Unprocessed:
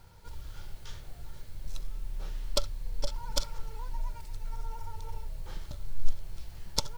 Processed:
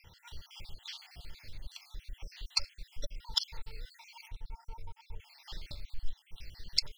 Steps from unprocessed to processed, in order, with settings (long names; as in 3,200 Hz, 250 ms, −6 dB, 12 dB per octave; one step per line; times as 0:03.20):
time-frequency cells dropped at random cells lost 61%
0:04.28–0:05.20: high-shelf EQ 2,100 Hz −10 dB
downward compressor 1.5 to 1, threshold −42 dBFS, peak gain reduction 10.5 dB
flat-topped bell 3,200 Hz +13 dB
level −1 dB